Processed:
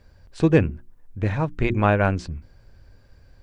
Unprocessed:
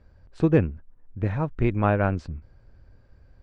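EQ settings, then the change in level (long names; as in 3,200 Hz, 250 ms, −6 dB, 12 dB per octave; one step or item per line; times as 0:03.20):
high-shelf EQ 2,700 Hz +11.5 dB
mains-hum notches 60/120/180/240/300/360 Hz
notch filter 1,300 Hz, Q 20
+2.5 dB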